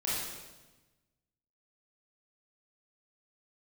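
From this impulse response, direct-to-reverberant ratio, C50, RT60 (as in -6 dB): -8.5 dB, -2.0 dB, 1.2 s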